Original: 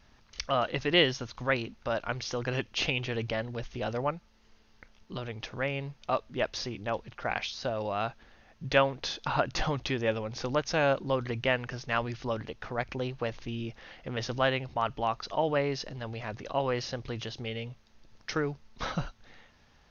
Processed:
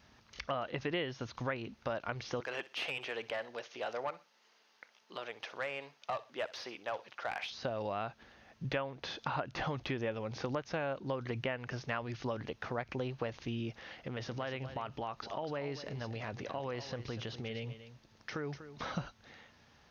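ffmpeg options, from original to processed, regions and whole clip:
-filter_complex "[0:a]asettb=1/sr,asplit=3[s0][s1][s2];[s0]atrim=end=2.404[s3];[s1]atrim=start=2.4:end=7.5,asetpts=PTS-STARTPTS,afade=t=in:d=0.004:c=qsin,afade=t=out:st=5.096:d=0.004:c=qsin,highpass=550,aeval=exprs='(tanh(20*val(0)+0.15)-tanh(0.15))/20':c=same,aecho=1:1:62|124:0.1|0.027,atrim=end_sample=224910[s4];[s2]atrim=start=7.496[s5];[s3][s4]acrossfade=d=0.004:c1=hsin:c2=qsin[s6];[s6][s5]acrossfade=d=0.004:c1=qsin:c2=hsin,asettb=1/sr,asplit=3[s7][s8][s9];[s7]atrim=end=14.044[s10];[s8]atrim=start=14.04:end=18.97,asetpts=PTS-STARTPTS,afade=t=in:d=0.004:c=qsin,afade=t=out:st=4.926:d=0.004:c=qsin,acompressor=threshold=0.0158:ratio=3:attack=3.2:release=140:knee=1:detection=peak,aecho=1:1:243:0.224,atrim=end_sample=217413[s11];[s9]atrim=start=18.966[s12];[s10][s11]acrossfade=d=0.004:c1=hsin:c2=qsin[s13];[s13][s12]acrossfade=d=0.004:c1=qsin:c2=hsin,acrossover=split=3000[s14][s15];[s15]acompressor=threshold=0.00355:ratio=4:attack=1:release=60[s16];[s14][s16]amix=inputs=2:normalize=0,highpass=76,acompressor=threshold=0.0224:ratio=6"

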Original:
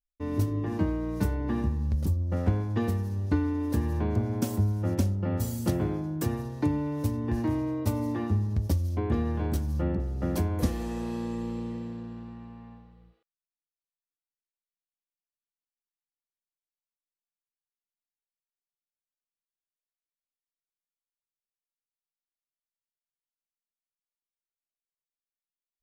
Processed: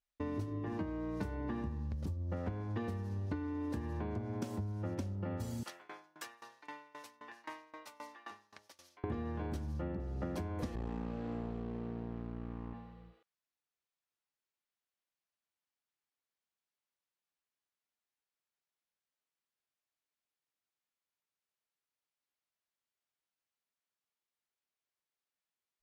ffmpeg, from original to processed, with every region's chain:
-filter_complex "[0:a]asettb=1/sr,asplit=3[s0][s1][s2];[s0]atrim=end=5.634[s3];[s1]atrim=start=5.63:end=9.04,asetpts=PTS-STARTPTS,afade=t=in:d=0.004:c=qsin,afade=t=out:st=3.406:d=0.004:c=qsin,highpass=1300,aeval=exprs='val(0)*pow(10,-23*if(lt(mod(3.8*n/s,1),2*abs(3.8)/1000),1-mod(3.8*n/s,1)/(2*abs(3.8)/1000),(mod(3.8*n/s,1)-2*abs(3.8)/1000)/(1-2*abs(3.8)/1000))/20)':c=same[s4];[s2]atrim=start=9.036[s5];[s3][s4]acrossfade=d=0.004:c1=hsin:c2=qsin[s6];[s6][s5]acrossfade=d=0.004:c1=qsin:c2=hsin,asettb=1/sr,asplit=3[s7][s8][s9];[s7]atrim=end=10.754[s10];[s8]atrim=start=10.75:end=12.74,asetpts=PTS-STARTPTS,afade=t=in:d=0.004:c=qsin,afade=t=out:st=1.986:d=0.004:c=qsin,aemphasis=mode=reproduction:type=bsi,aeval=exprs='max(val(0),0)':c=same[s11];[s9]atrim=start=12.736[s12];[s10][s11]acrossfade=d=0.004:c1=hsin:c2=qsin[s13];[s13][s12]acrossfade=d=0.004:c1=qsin:c2=hsin,highpass=f=660:p=1,aemphasis=mode=reproduction:type=bsi,acompressor=threshold=0.00708:ratio=6,volume=2.11"

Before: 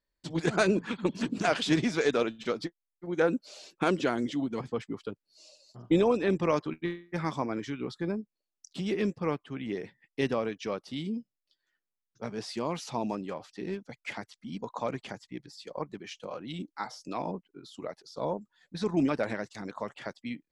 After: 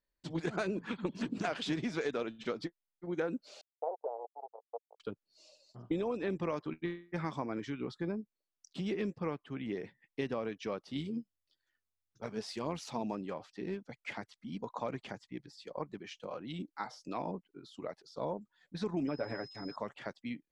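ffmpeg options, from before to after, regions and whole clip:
-filter_complex "[0:a]asettb=1/sr,asplit=3[s0][s1][s2];[s0]atrim=end=3.614[s3];[s1]atrim=start=3.61:end=5,asetpts=PTS-STARTPTS,afade=t=in:d=0.004:c=qsin,afade=t=out:st=1.386:d=0.004:c=qsin,acrusher=bits=3:mix=0:aa=0.5,asuperpass=centerf=630:order=8:qfactor=1.5[s4];[s2]atrim=start=4.996[s5];[s3][s4]acrossfade=d=0.004:c1=hsin:c2=qsin[s6];[s6][s5]acrossfade=d=0.004:c1=qsin:c2=hsin,asettb=1/sr,asplit=3[s7][s8][s9];[s7]atrim=end=10.954[s10];[s8]atrim=start=10.95:end=13.03,asetpts=PTS-STARTPTS,afade=t=in:d=0.004:c=qsin,afade=t=out:st=2.076:d=0.004:c=qsin,highshelf=f=5500:g=7.5,aphaser=in_gain=1:out_gain=1:delay=4.7:decay=0.42:speed=1.7:type=sinusoidal,tremolo=f=91:d=0.333[s11];[s9]atrim=start=13.026[s12];[s10][s11]acrossfade=d=0.004:c1=hsin:c2=qsin[s13];[s13][s12]acrossfade=d=0.004:c1=qsin:c2=hsin,asettb=1/sr,asplit=3[s14][s15][s16];[s14]atrim=end=19.074[s17];[s15]atrim=start=19.07:end=19.76,asetpts=PTS-STARTPTS,afade=t=in:d=0.004:c=qsin,afade=t=out:st=0.686:d=0.004:c=qsin,highshelf=f=2200:g=-10,aecho=1:1:7.1:0.61,atrim=end_sample=30429,aeval=exprs='val(0)+0.00631*sin(2*PI*5100*n/s)':c=same[s18];[s16]atrim=start=19.756[s19];[s17][s18]acrossfade=d=0.004:c1=hsin:c2=qsin[s20];[s20][s19]acrossfade=d=0.004:c1=qsin:c2=hsin,highshelf=f=6300:g=-9.5,acompressor=threshold=0.0398:ratio=6,volume=0.708"

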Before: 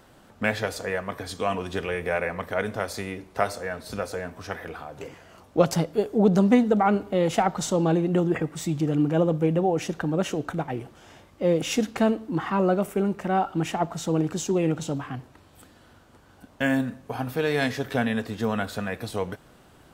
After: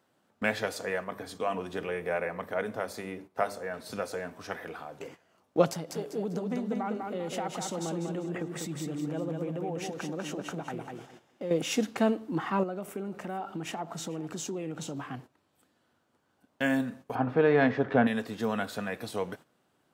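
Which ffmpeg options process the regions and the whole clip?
-filter_complex "[0:a]asettb=1/sr,asplit=3[s0][s1][s2];[s0]atrim=end=1.044[s3];[s1]atrim=start=1.04:end=3.74,asetpts=PTS-STARTPTS,afade=t=in:d=0.004:c=qsin,afade=t=out:st=2.696:d=0.004:c=qsin,equalizer=f=5100:w=0.35:g=-5.5,bandreject=f=50:t=h:w=6,bandreject=f=100:t=h:w=6,bandreject=f=150:t=h:w=6,bandreject=f=200:t=h:w=6,bandreject=f=250:t=h:w=6,bandreject=f=300:t=h:w=6,bandreject=f=350:t=h:w=6,bandreject=f=400:t=h:w=6[s4];[s2]atrim=start=3.736[s5];[s3][s4]acrossfade=d=0.004:c1=hsin:c2=qsin[s6];[s6][s5]acrossfade=d=0.004:c1=qsin:c2=hsin,asettb=1/sr,asplit=3[s7][s8][s9];[s7]atrim=end=5.704[s10];[s8]atrim=start=5.7:end=11.51,asetpts=PTS-STARTPTS,afade=t=in:d=0.004:c=qsin,afade=t=out:st=5.806:d=0.004:c=qsin,acompressor=threshold=0.0282:ratio=2.5:attack=3.2:release=140:knee=1:detection=peak,aecho=1:1:197|394|591|788:0.631|0.221|0.0773|0.0271,atrim=end_sample=256221[s11];[s9]atrim=start=11.506[s12];[s10][s11]acrossfade=d=0.004:c1=hsin:c2=qsin[s13];[s13][s12]acrossfade=d=0.004:c1=qsin:c2=hsin,asettb=1/sr,asplit=3[s14][s15][s16];[s14]atrim=end=12.634[s17];[s15]atrim=start=12.63:end=14.98,asetpts=PTS-STARTPTS,afade=t=in:d=0.004:c=qsin,afade=t=out:st=2.346:d=0.004:c=qsin,acompressor=threshold=0.0398:ratio=5:attack=3.2:release=140:knee=1:detection=peak,aecho=1:1:441:0.112,atrim=end_sample=103635[s18];[s16]atrim=start=14.976[s19];[s17][s18]acrossfade=d=0.004:c1=hsin:c2=qsin[s20];[s20][s19]acrossfade=d=0.004:c1=qsin:c2=hsin,asettb=1/sr,asplit=3[s21][s22][s23];[s21]atrim=end=17.154[s24];[s22]atrim=start=17.15:end=18.07,asetpts=PTS-STARTPTS,afade=t=in:d=0.004:c=qsin,afade=t=out:st=0.916:d=0.004:c=qsin,lowpass=1600,acontrast=60[s25];[s23]atrim=start=18.066[s26];[s24][s25]acrossfade=d=0.004:c1=hsin:c2=qsin[s27];[s27][s26]acrossfade=d=0.004:c1=qsin:c2=hsin,highpass=150,agate=range=0.224:threshold=0.00708:ratio=16:detection=peak,volume=0.668"

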